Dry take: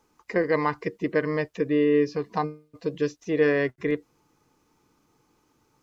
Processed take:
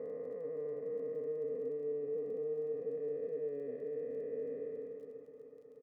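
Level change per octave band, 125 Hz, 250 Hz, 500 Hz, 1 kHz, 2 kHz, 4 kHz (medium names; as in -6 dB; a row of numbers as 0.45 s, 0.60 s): -23.0 dB, -23.0 dB, -10.5 dB, under -30 dB, under -30 dB, under -35 dB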